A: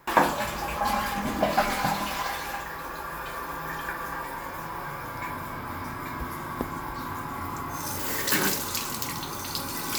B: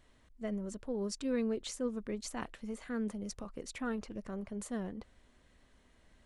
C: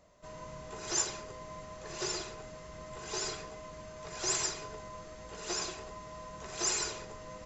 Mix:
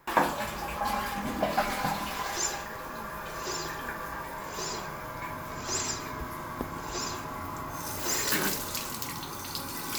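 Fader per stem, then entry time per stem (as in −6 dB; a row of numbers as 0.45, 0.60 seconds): −4.0, −13.5, 0.0 decibels; 0.00, 0.00, 1.45 seconds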